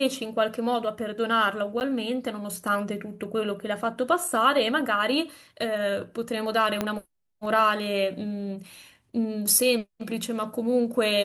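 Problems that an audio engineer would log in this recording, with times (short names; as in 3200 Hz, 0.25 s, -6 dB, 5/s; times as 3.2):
1.8–1.81 gap 9.5 ms
6.81 pop -11 dBFS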